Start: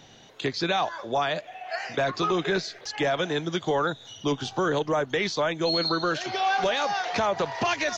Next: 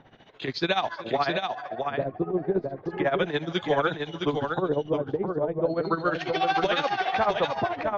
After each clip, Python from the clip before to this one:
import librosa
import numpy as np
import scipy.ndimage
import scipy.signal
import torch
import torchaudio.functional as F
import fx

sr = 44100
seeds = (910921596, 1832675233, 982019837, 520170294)

y = x * (1.0 - 0.79 / 2.0 + 0.79 / 2.0 * np.cos(2.0 * np.pi * 14.0 * (np.arange(len(x)) / sr)))
y = fx.filter_lfo_lowpass(y, sr, shape='sine', hz=0.34, low_hz=430.0, high_hz=4100.0, q=1.0)
y = fx.echo_multitap(y, sr, ms=(377, 664), db=(-19.5, -4.5))
y = y * 10.0 ** (2.5 / 20.0)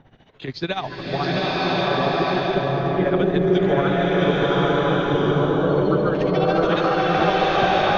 y = fx.low_shelf(x, sr, hz=170.0, db=11.0)
y = fx.rev_bloom(y, sr, seeds[0], attack_ms=1080, drr_db=-7.5)
y = y * 10.0 ** (-2.0 / 20.0)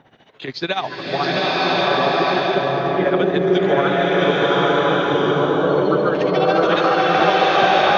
y = fx.highpass(x, sr, hz=370.0, slope=6)
y = y * 10.0 ** (5.0 / 20.0)